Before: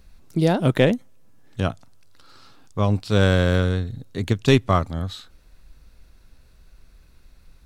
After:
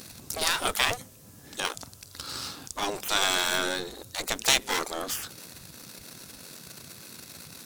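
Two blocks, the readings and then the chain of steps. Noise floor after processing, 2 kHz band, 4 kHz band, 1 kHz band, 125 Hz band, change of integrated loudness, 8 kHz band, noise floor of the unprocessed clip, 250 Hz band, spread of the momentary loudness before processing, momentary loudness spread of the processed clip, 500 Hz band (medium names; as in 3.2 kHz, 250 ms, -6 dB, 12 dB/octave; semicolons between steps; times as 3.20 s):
-51 dBFS, +0.5 dB, +5.0 dB, -2.5 dB, -25.5 dB, -6.0 dB, +14.0 dB, -53 dBFS, -17.5 dB, 13 LU, 20 LU, -12.0 dB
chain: power-law waveshaper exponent 0.7; tone controls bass +3 dB, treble +11 dB; spectral gate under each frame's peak -20 dB weak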